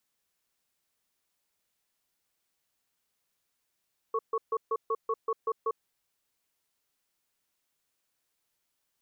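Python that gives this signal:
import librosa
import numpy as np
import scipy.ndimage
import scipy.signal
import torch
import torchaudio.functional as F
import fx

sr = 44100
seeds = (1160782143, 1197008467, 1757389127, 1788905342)

y = fx.cadence(sr, length_s=1.58, low_hz=450.0, high_hz=1110.0, on_s=0.05, off_s=0.14, level_db=-28.5)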